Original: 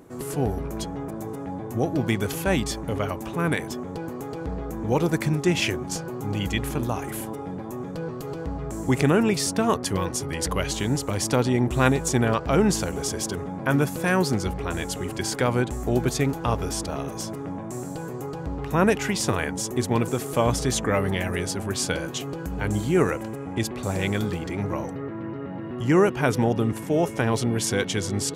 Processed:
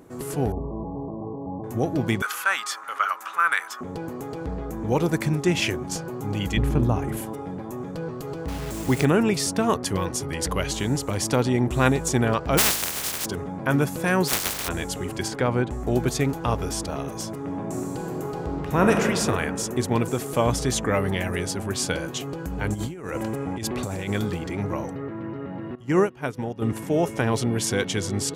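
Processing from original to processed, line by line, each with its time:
0.52–1.64 s: brick-wall FIR low-pass 1.2 kHz
2.22–3.81 s: resonant high-pass 1.3 kHz, resonance Q 5.5
6.57–7.17 s: tilt EQ -2.5 dB/octave
8.48–9.05 s: word length cut 6-bit, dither none
12.57–13.24 s: spectral contrast reduction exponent 0.1
14.27–14.67 s: spectral contrast reduction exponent 0.14
15.28–15.87 s: low-pass 2.6 kHz 6 dB/octave
17.38–18.98 s: reverb throw, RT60 2.6 s, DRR 1.5 dB
22.74–24.09 s: compressor with a negative ratio -30 dBFS
25.75–26.62 s: upward expansion 2.5:1, over -26 dBFS

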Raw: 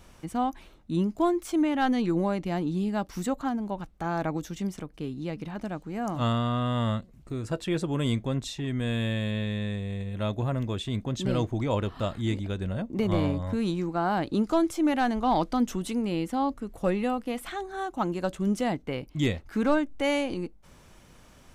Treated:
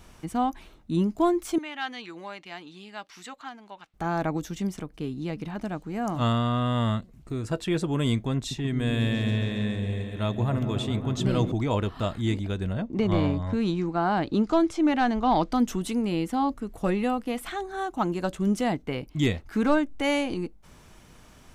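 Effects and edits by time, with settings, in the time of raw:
1.58–3.94 s: band-pass filter 2.8 kHz, Q 0.92
8.37–11.52 s: delay with an opening low-pass 138 ms, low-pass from 400 Hz, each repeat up 1 oct, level -6 dB
12.73–15.52 s: low-pass 6.1 kHz
whole clip: band-stop 540 Hz, Q 12; trim +2 dB

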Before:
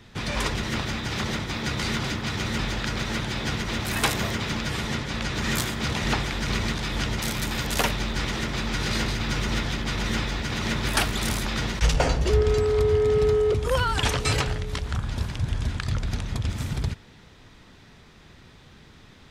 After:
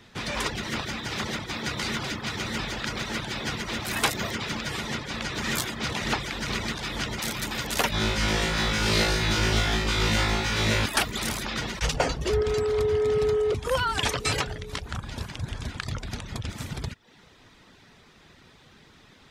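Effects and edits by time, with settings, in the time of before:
7.90–10.86 s: flutter echo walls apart 3.2 m, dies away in 0.91 s
whole clip: bass shelf 140 Hz -9 dB; reverb removal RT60 0.5 s

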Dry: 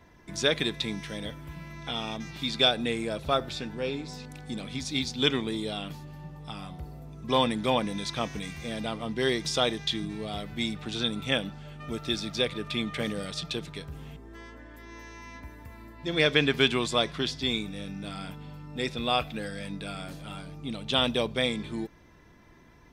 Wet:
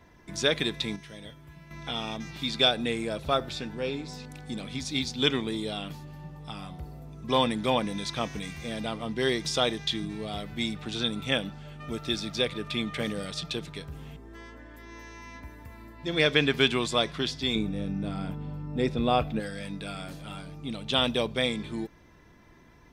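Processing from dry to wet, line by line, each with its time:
0.96–1.71 s: feedback comb 130 Hz, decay 0.18 s, harmonics odd, mix 70%
17.55–19.40 s: tilt shelf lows +7 dB, about 1.2 kHz

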